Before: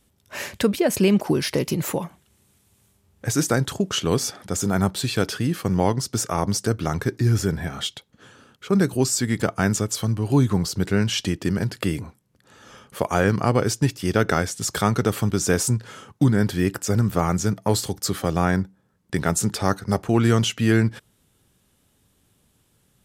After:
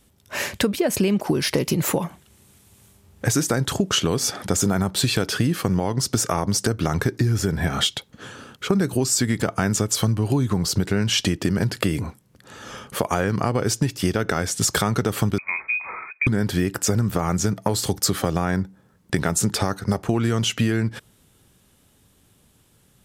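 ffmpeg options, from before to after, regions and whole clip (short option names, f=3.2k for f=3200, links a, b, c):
-filter_complex "[0:a]asettb=1/sr,asplit=3[a][b][c];[a]atrim=end=15.384[d];[b]atrim=start=15.38:end=16.27,asetpts=PTS-STARTPTS,afade=t=in:d=0.004:c=qsin,afade=t=out:st=0.886:d=0.004:c=qsin,bandreject=f=930:w=10,acompressor=threshold=-29dB:ratio=5:attack=3.2:release=140:knee=1:detection=peak,lowpass=f=2.2k:t=q:w=0.5098,lowpass=f=2.2k:t=q:w=0.6013,lowpass=f=2.2k:t=q:w=0.9,lowpass=f=2.2k:t=q:w=2.563,afreqshift=-2600[e];[c]atrim=start=16.266[f];[d][e]acrossfade=d=0.004:c1=hsin:c2=qsin[g];[g][f]acrossfade=d=0.004:c1=qsin:c2=hsin,dynaudnorm=f=170:g=31:m=11.5dB,alimiter=limit=-8.5dB:level=0:latency=1:release=244,acompressor=threshold=-22dB:ratio=6,volume=5dB"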